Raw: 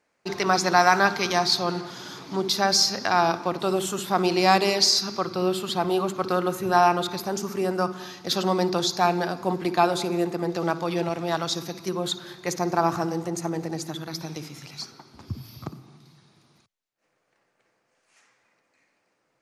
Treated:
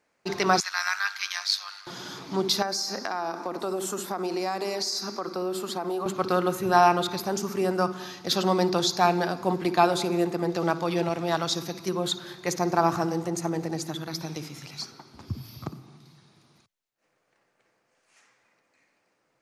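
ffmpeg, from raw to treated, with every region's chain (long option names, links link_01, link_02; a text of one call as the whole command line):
ffmpeg -i in.wav -filter_complex "[0:a]asettb=1/sr,asplit=3[link_01][link_02][link_03];[link_01]atrim=end=0.604[link_04];[link_02]atrim=start=0.6:end=1.87,asetpts=PTS-STARTPTS,afade=type=in:duration=0.004:curve=qsin,afade=type=out:start_time=1.266:duration=0.004:curve=qsin,highpass=frequency=1400:width=0.5412,highpass=frequency=1400:width=1.3066,tremolo=f=99:d=0.71[link_05];[link_03]atrim=start=1.866[link_06];[link_04][link_05]acrossfade=duration=0.004:curve1=hsin:curve2=qsin[link_07];[link_07][link_06]acrossfade=duration=0.004:curve1=qsin:curve2=hsin,asettb=1/sr,asplit=3[link_08][link_09][link_10];[link_08]atrim=end=2.624[link_11];[link_09]atrim=start=2.62:end=6.06,asetpts=PTS-STARTPTS,afade=type=in:duration=0.004:curve=qsin,afade=type=out:start_time=3.436:duration=0.004:curve=qsin,highpass=frequency=210:width=0.5412,highpass=frequency=210:width=1.3066,equalizer=frequency=3100:width_type=o:width=0.89:gain=-9.5,acompressor=threshold=-26dB:ratio=5:attack=3.2:release=140:knee=1:detection=peak[link_12];[link_10]atrim=start=6.056[link_13];[link_11][link_12]acrossfade=duration=0.004:curve1=hsin:curve2=qsin[link_14];[link_14][link_13]acrossfade=duration=0.004:curve1=qsin:curve2=hsin" out.wav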